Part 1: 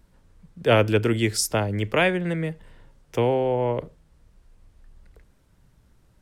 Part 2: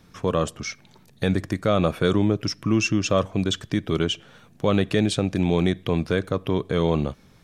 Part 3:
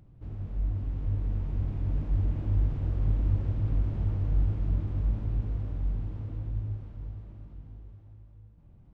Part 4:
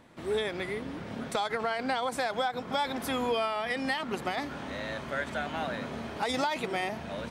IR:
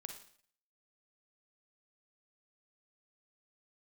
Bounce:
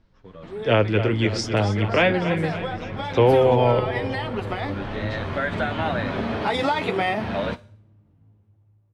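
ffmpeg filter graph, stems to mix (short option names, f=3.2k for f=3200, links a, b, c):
-filter_complex "[0:a]lowpass=f=5.2k:w=0.5412,lowpass=f=5.2k:w=1.3066,volume=1.5dB,asplit=3[a][b][c];[b]volume=-12dB[d];[1:a]asplit=2[e][f];[f]adelay=8.3,afreqshift=-2.7[g];[e][g]amix=inputs=2:normalize=1,volume=-16dB[h];[2:a]alimiter=level_in=2.5dB:limit=-24dB:level=0:latency=1,volume=-2.5dB,highpass=92,adelay=550,volume=0.5dB,asplit=2[i][j];[j]volume=-14.5dB[k];[3:a]adelay=250,volume=1.5dB,asplit=2[l][m];[m]volume=-11dB[n];[c]apad=whole_len=418395[o];[i][o]sidechaingate=range=-33dB:threshold=-55dB:ratio=16:detection=peak[p];[h][p][l]amix=inputs=3:normalize=0,lowpass=f=5.2k:w=0.5412,lowpass=f=5.2k:w=1.3066,acompressor=threshold=-32dB:ratio=3,volume=0dB[q];[4:a]atrim=start_sample=2205[r];[k][n]amix=inputs=2:normalize=0[s];[s][r]afir=irnorm=-1:irlink=0[t];[d]aecho=0:1:278|556|834|1112|1390|1668|1946|2224:1|0.54|0.292|0.157|0.085|0.0459|0.0248|0.0134[u];[a][q][t][u]amix=inputs=4:normalize=0,dynaudnorm=f=700:g=3:m=13.5dB,flanger=delay=9:depth=1.6:regen=-37:speed=1.4:shape=triangular"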